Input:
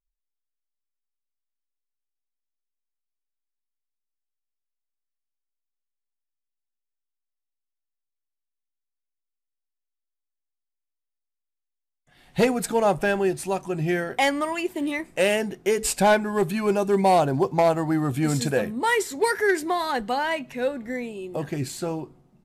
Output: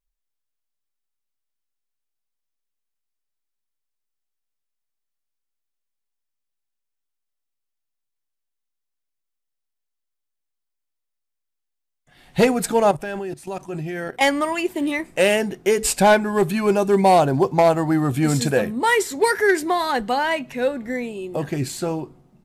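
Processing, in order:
0:12.91–0:14.21: output level in coarse steps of 16 dB
level +4 dB

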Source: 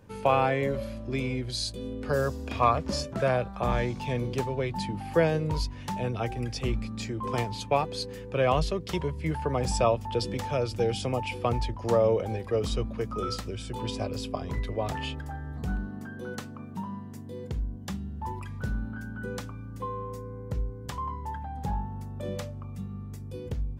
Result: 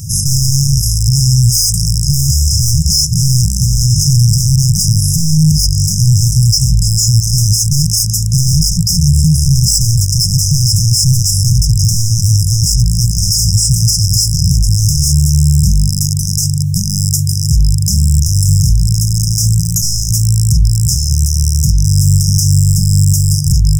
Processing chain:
loose part that buzzes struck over −39 dBFS, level −30 dBFS
0:19.58–0:20.11: EQ curve with evenly spaced ripples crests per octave 1.1, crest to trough 15 dB
asymmetric clip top −32 dBFS, bottom −14 dBFS
mid-hump overdrive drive 25 dB, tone 6,200 Hz, clips at −14 dBFS
linear-phase brick-wall band-stop 170–5,000 Hz
boost into a limiter +30.5 dB
level −1.5 dB

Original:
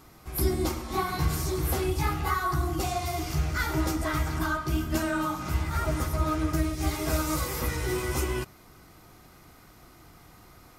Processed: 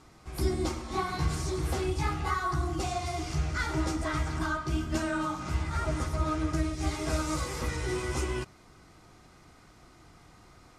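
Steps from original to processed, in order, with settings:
low-pass filter 9,100 Hz 24 dB per octave
level −2.5 dB

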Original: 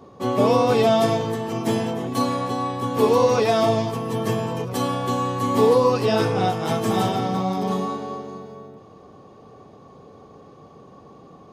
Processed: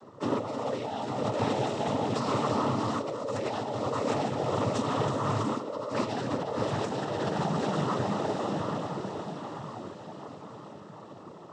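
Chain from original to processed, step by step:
feedback delay with all-pass diffusion 715 ms, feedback 53%, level −5 dB
compressor whose output falls as the input rises −23 dBFS, ratio −1
cochlear-implant simulation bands 12
level −6.5 dB

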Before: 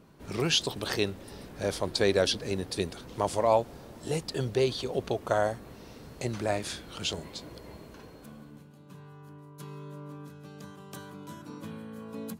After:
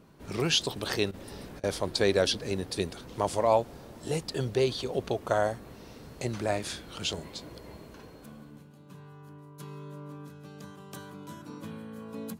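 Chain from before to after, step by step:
0:01.11–0:01.64: compressor whose output falls as the input rises −43 dBFS, ratio −0.5

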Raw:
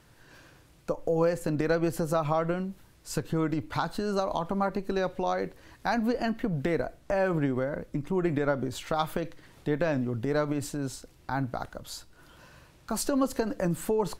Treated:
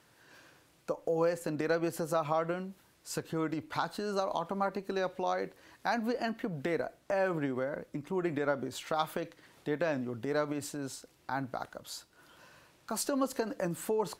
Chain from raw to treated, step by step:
high-pass filter 300 Hz 6 dB per octave
level −2.5 dB

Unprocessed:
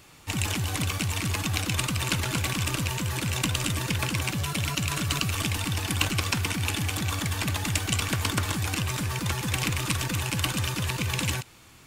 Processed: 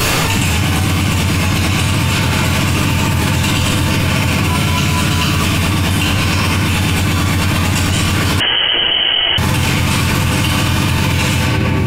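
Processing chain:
convolution reverb RT60 2.2 s, pre-delay 4 ms, DRR −15 dB
0:08.40–0:09.38: voice inversion scrambler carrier 3,100 Hz
envelope flattener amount 100%
level −8 dB

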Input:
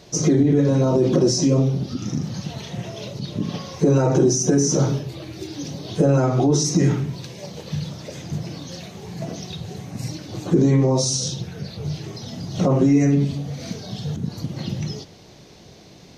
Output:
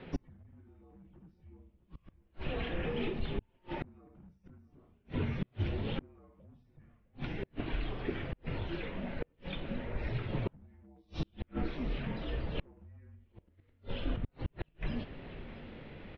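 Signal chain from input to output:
gain into a clipping stage and back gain 11.5 dB
flanger 0.14 Hz, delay 5.4 ms, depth 4.9 ms, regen +86%
single-sideband voice off tune −190 Hz 190–3,000 Hz
on a send: single-tap delay 661 ms −17 dB
on the sum: gate with flip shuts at −28 dBFS, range −39 dB
level +5.5 dB

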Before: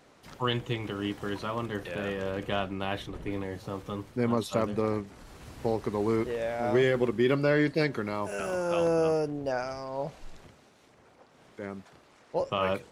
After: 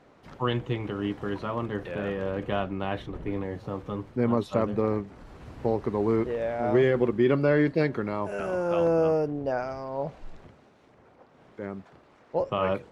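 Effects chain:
low-pass filter 1,500 Hz 6 dB per octave
level +3 dB

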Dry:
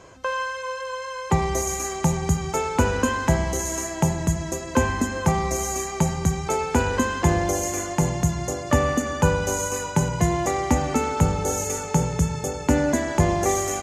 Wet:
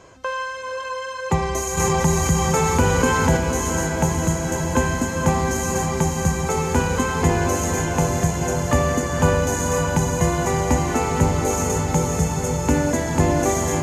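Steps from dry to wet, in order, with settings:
on a send: feedback delay with all-pass diffusion 549 ms, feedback 65%, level −4 dB
0:01.77–0:03.37: on the sum: envelope flattener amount 50%

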